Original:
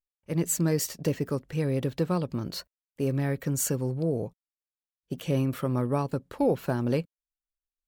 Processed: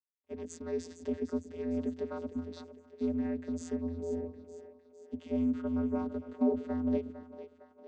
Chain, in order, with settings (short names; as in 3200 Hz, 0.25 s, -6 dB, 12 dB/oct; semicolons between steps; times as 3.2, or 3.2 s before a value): split-band echo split 390 Hz, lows 0.123 s, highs 0.456 s, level -11 dB; vocoder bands 16, square 84 Hz; gain -5.5 dB